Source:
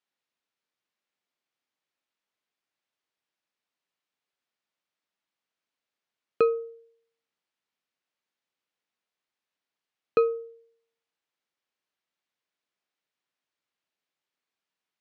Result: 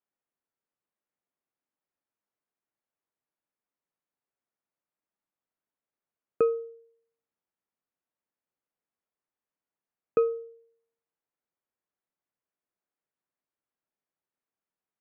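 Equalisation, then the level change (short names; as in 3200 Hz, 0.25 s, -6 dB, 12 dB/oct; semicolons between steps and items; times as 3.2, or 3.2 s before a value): LPF 1500 Hz 6 dB/oct; air absorption 460 m; 0.0 dB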